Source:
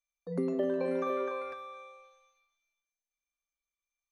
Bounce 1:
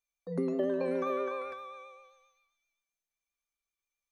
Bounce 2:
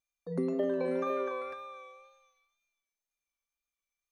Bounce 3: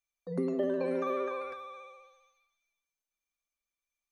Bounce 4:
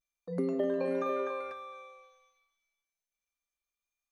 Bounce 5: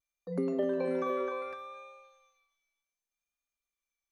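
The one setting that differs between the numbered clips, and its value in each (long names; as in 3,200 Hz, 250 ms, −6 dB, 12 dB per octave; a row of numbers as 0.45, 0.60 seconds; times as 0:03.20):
pitch vibrato, speed: 7.6, 2, 15, 0.3, 0.66 Hertz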